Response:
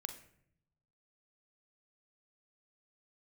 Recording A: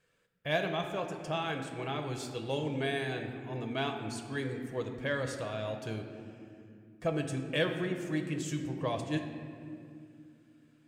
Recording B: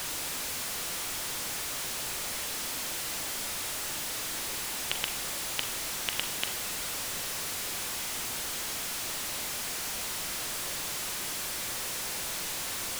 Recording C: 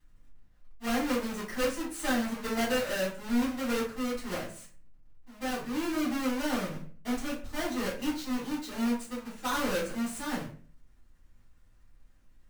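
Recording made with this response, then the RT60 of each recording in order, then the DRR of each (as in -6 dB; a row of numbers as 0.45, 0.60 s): B; 2.5, 0.70, 0.40 s; 4.0, 7.0, -8.0 dB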